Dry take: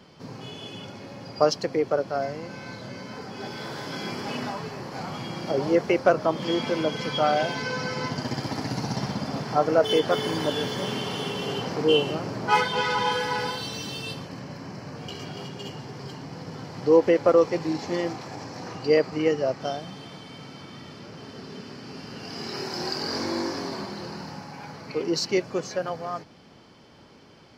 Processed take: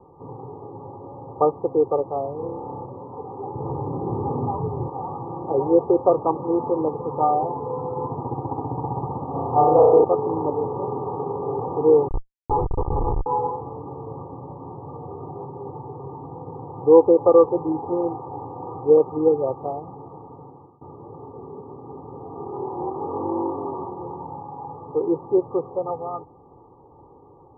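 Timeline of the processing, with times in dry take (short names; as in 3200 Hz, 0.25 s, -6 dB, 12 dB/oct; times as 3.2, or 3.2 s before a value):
2.36–2.85 flutter echo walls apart 5.1 m, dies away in 0.78 s
3.55–4.89 RIAA curve playback
9.31–10.04 flutter echo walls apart 5.6 m, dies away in 1.1 s
12.08–13.26 Schmitt trigger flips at -19 dBFS
20.19–20.81 fade out equal-power, to -23 dB
whole clip: Chebyshev low-pass 1200 Hz, order 10; bell 950 Hz +5.5 dB 0.31 oct; comb 2.4 ms, depth 74%; gain +2 dB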